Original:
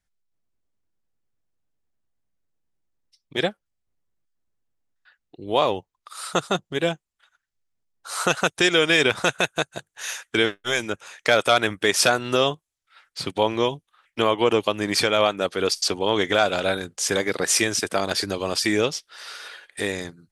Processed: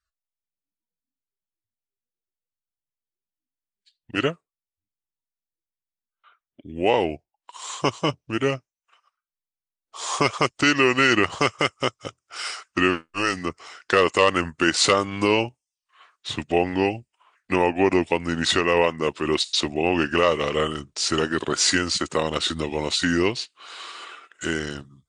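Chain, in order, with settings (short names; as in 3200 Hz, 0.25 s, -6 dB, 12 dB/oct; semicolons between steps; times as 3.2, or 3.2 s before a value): spectral noise reduction 19 dB; varispeed -19%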